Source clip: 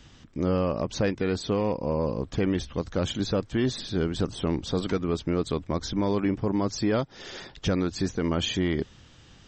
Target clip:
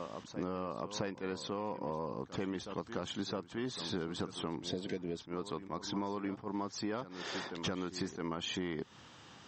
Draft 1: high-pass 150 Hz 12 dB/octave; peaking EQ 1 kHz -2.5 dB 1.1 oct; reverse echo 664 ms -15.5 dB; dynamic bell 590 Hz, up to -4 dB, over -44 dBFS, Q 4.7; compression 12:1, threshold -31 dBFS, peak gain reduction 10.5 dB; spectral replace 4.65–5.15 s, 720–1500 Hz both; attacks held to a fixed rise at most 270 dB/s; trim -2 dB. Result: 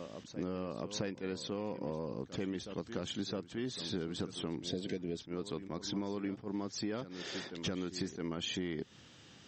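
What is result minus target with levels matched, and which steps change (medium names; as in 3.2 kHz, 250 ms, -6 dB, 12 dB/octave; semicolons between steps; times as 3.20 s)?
1 kHz band -7.0 dB
change: peaking EQ 1 kHz +8 dB 1.1 oct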